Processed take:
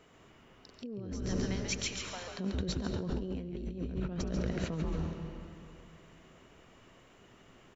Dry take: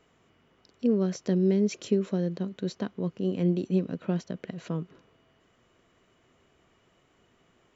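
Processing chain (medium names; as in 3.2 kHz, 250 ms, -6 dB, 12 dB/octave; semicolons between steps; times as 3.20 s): in parallel at +1.5 dB: peak limiter -21.5 dBFS, peak gain reduction 8 dB; 1.25–2.39 s: on the sum: steep high-pass 740 Hz 36 dB/octave; frequency-shifting echo 138 ms, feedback 32%, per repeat -120 Hz, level -3.5 dB; on a send at -8 dB: reverberation RT60 2.6 s, pre-delay 60 ms; on the sum: compressor with a negative ratio -28 dBFS, ratio -1; trim -7.5 dB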